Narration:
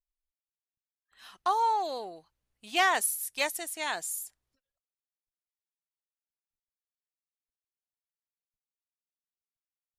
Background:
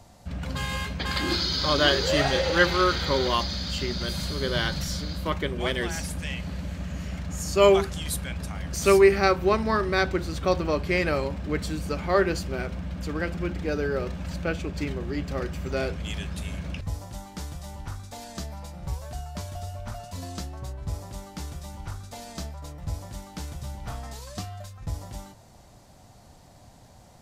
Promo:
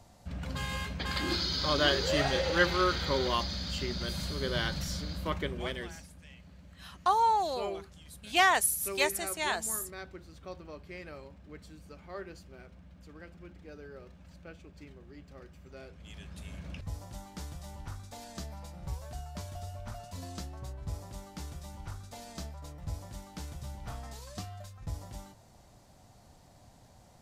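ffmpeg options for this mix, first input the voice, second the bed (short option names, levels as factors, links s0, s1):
-filter_complex "[0:a]adelay=5600,volume=1.12[s0];[1:a]volume=2.82,afade=t=out:st=5.43:d=0.64:silence=0.177828,afade=t=in:st=15.9:d=1.22:silence=0.188365[s1];[s0][s1]amix=inputs=2:normalize=0"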